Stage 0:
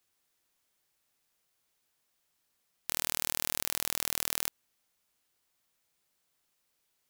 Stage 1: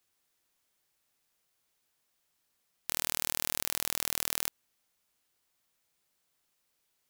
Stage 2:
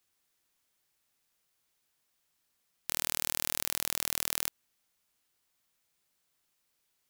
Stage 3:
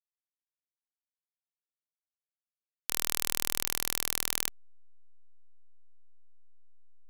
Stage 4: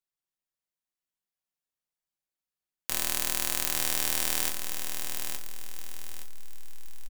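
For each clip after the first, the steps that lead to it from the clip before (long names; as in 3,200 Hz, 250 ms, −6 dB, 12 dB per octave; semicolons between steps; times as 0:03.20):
no processing that can be heard
parametric band 580 Hz −2 dB 1.5 octaves
slack as between gear wheels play −34.5 dBFS; level +2.5 dB
repeating echo 869 ms, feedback 35%, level −6.5 dB; convolution reverb, pre-delay 5 ms, DRR 3 dB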